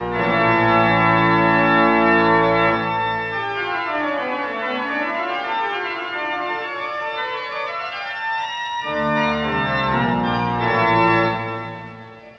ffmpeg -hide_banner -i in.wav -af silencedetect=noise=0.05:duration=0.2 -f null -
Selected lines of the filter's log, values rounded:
silence_start: 11.90
silence_end: 12.39 | silence_duration: 0.49